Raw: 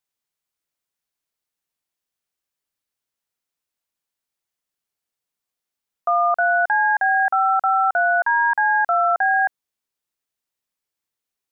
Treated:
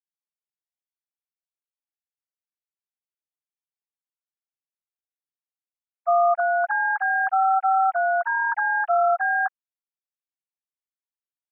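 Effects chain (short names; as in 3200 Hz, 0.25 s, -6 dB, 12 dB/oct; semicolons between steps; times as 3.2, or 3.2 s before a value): sine-wave speech; gain -3 dB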